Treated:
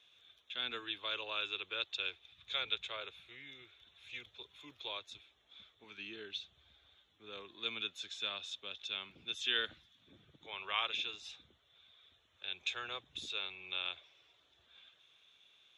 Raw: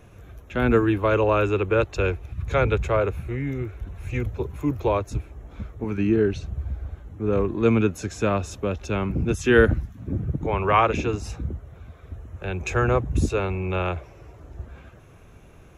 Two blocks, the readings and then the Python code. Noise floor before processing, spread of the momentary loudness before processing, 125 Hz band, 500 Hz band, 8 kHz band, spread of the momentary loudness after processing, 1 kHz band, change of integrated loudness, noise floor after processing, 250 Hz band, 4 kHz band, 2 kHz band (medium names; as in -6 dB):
-48 dBFS, 15 LU, under -40 dB, -28.5 dB, -15.0 dB, 19 LU, -20.5 dB, -15.5 dB, -72 dBFS, -33.5 dB, +4.5 dB, -12.5 dB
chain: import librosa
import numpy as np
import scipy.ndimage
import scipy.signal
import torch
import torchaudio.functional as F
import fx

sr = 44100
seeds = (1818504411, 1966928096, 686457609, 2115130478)

y = fx.bandpass_q(x, sr, hz=3500.0, q=13.0)
y = y * librosa.db_to_amplitude(11.0)